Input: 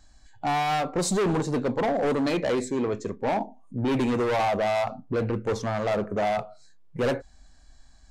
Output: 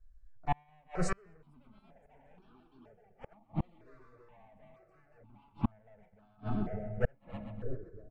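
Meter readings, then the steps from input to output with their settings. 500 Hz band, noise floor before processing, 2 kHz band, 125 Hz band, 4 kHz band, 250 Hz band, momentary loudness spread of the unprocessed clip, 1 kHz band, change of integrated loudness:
-19.5 dB, -53 dBFS, -16.0 dB, -8.5 dB, under -20 dB, -13.5 dB, 6 LU, -16.5 dB, -12.5 dB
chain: RIAA curve playback; gate -22 dBFS, range -25 dB; dynamic bell 1.5 kHz, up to +6 dB, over -42 dBFS, Q 1.3; comb 4.6 ms, depth 37%; slow attack 120 ms; gain riding within 4 dB 2 s; ever faster or slower copies 723 ms, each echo +5 st, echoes 2; two-band feedback delay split 420 Hz, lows 602 ms, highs 129 ms, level -12 dB; inverted gate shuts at -15 dBFS, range -39 dB; resampled via 22.05 kHz; stepped phaser 2.1 Hz 830–2000 Hz

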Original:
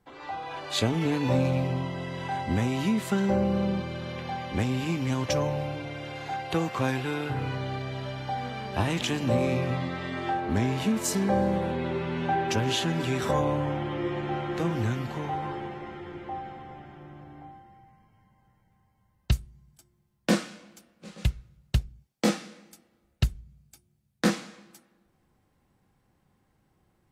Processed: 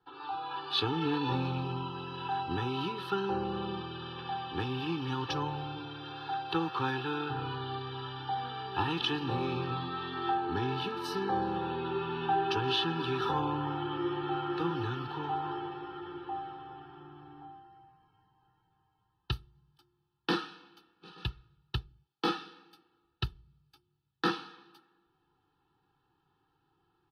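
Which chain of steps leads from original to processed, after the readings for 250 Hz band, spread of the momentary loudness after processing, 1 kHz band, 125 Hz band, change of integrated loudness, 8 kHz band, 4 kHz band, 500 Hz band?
-7.5 dB, 10 LU, -1.0 dB, -8.5 dB, -5.5 dB, under -15 dB, -0.5 dB, -6.5 dB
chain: three-band isolator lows -19 dB, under 160 Hz, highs -18 dB, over 4.5 kHz; static phaser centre 2.1 kHz, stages 6; comb 2.3 ms, depth 92%

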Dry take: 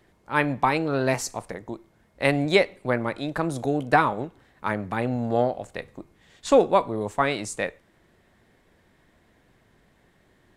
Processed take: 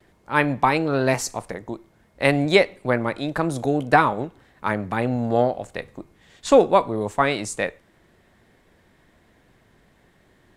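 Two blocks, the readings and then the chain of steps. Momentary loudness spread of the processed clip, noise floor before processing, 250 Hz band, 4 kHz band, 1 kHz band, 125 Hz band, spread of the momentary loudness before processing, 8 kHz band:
16 LU, -62 dBFS, +3.0 dB, +3.0 dB, +3.0 dB, +3.0 dB, 16 LU, +3.0 dB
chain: gate with hold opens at -55 dBFS; trim +3 dB

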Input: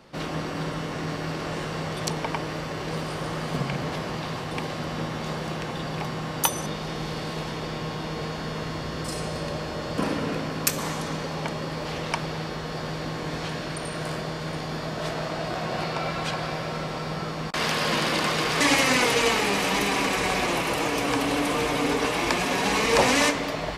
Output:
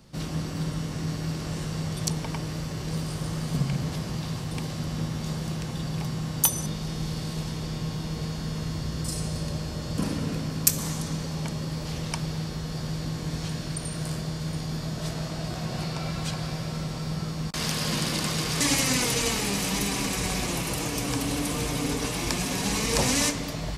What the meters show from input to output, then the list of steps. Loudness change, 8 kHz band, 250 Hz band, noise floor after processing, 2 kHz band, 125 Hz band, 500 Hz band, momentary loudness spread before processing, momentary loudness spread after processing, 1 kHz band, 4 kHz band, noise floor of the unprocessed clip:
-2.0 dB, +3.5 dB, -0.5 dB, -34 dBFS, -7.5 dB, +3.5 dB, -7.5 dB, 10 LU, 9 LU, -9.0 dB, -2.5 dB, -33 dBFS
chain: tone controls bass +15 dB, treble +14 dB; trim -9 dB

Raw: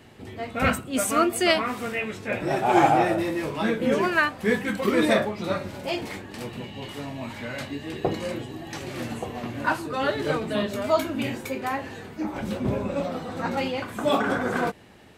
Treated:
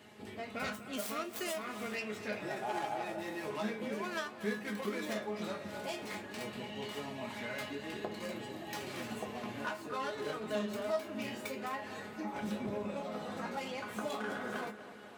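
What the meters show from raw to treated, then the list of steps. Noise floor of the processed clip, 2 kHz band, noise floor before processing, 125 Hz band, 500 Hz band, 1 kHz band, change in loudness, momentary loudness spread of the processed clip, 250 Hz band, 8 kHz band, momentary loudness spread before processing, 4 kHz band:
-49 dBFS, -13.0 dB, -42 dBFS, -15.5 dB, -13.0 dB, -14.5 dB, -13.5 dB, 5 LU, -13.5 dB, -12.5 dB, 14 LU, -11.5 dB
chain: tracing distortion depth 0.29 ms; high-pass 74 Hz; bass shelf 230 Hz -7 dB; compression 5:1, threshold -32 dBFS, peak gain reduction 16.5 dB; feedback comb 210 Hz, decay 0.2 s, harmonics all, mix 80%; tape echo 251 ms, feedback 71%, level -13 dB, low-pass 4.2 kHz; trim +4.5 dB

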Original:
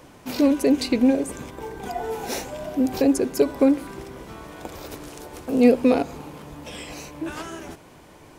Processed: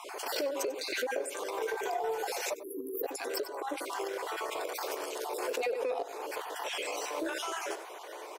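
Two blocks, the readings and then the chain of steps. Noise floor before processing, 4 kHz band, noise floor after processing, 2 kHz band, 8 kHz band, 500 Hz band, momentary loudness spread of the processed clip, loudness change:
-48 dBFS, -2.5 dB, -45 dBFS, -1.0 dB, -3.0 dB, -9.5 dB, 5 LU, -13.0 dB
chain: random holes in the spectrogram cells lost 31%; steep high-pass 380 Hz 48 dB/octave; compression 10:1, threshold -37 dBFS, peak gain reduction 23 dB; spectral selection erased 2.54–3.04 s, 490–10000 Hz; peak limiter -33 dBFS, peak gain reduction 7 dB; Chebyshev shaper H 3 -23 dB, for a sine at -32.5 dBFS; peaking EQ 570 Hz +2.5 dB 2.5 oct; delay 95 ms -13.5 dB; swell ahead of each attack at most 41 dB/s; trim +6.5 dB

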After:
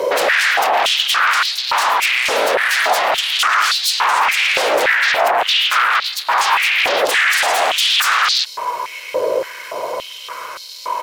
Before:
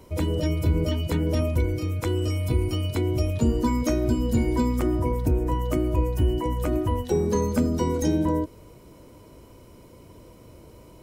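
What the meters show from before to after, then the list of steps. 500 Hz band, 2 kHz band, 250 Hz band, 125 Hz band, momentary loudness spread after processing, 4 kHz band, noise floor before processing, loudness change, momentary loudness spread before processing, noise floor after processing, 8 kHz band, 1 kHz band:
+7.0 dB, +28.5 dB, -14.5 dB, under -25 dB, 12 LU, +25.0 dB, -49 dBFS, +10.5 dB, 3 LU, -33 dBFS, +17.0 dB, +19.0 dB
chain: resonant high shelf 6.6 kHz -6.5 dB, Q 1.5; comb 1.9 ms, depth 60%; peak limiter -20.5 dBFS, peak gain reduction 11.5 dB; sine folder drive 18 dB, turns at -20.5 dBFS; hum 60 Hz, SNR 15 dB; step-sequenced high-pass 3.5 Hz 530–4200 Hz; trim +4.5 dB

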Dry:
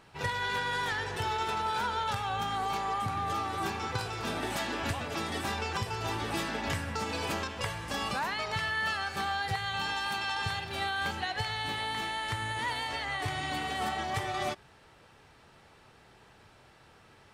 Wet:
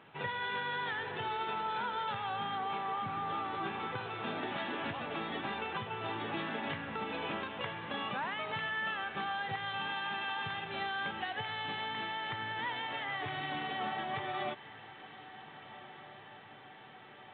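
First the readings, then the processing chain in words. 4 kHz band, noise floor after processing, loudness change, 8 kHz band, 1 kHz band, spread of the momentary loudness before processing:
-5.5 dB, -53 dBFS, -4.5 dB, under -35 dB, -3.5 dB, 3 LU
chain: compression 1.5:1, threshold -40 dBFS, peak gain reduction 5 dB; high-pass 130 Hz 24 dB/octave; echo that smears into a reverb 1633 ms, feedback 63%, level -16 dB; A-law 64 kbps 8 kHz

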